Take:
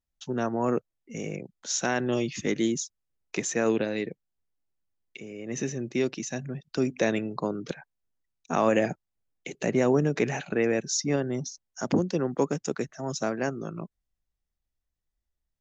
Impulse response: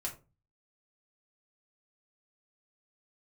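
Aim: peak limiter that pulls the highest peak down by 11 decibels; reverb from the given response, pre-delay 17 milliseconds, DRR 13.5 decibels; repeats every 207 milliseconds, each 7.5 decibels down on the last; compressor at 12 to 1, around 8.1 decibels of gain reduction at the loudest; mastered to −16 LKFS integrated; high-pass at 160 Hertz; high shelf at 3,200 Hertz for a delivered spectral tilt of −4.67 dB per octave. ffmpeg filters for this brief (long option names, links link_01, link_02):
-filter_complex "[0:a]highpass=160,highshelf=frequency=3200:gain=-8,acompressor=threshold=-27dB:ratio=12,alimiter=level_in=4.5dB:limit=-24dB:level=0:latency=1,volume=-4.5dB,aecho=1:1:207|414|621|828|1035:0.422|0.177|0.0744|0.0312|0.0131,asplit=2[link_01][link_02];[1:a]atrim=start_sample=2205,adelay=17[link_03];[link_02][link_03]afir=irnorm=-1:irlink=0,volume=-14dB[link_04];[link_01][link_04]amix=inputs=2:normalize=0,volume=22.5dB"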